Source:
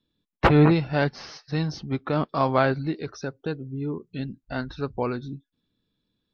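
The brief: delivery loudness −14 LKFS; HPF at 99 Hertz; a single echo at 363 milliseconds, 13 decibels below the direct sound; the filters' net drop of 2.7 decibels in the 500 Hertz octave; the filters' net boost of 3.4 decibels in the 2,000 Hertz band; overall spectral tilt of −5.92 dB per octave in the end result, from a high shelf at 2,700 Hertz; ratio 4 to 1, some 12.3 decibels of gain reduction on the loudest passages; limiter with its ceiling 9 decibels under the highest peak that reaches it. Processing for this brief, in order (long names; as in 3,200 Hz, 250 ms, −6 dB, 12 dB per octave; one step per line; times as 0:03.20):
high-pass filter 99 Hz
parametric band 500 Hz −3.5 dB
parametric band 2,000 Hz +7.5 dB
high-shelf EQ 2,700 Hz −6.5 dB
downward compressor 4 to 1, threshold −28 dBFS
brickwall limiter −24 dBFS
single-tap delay 363 ms −13 dB
level +22 dB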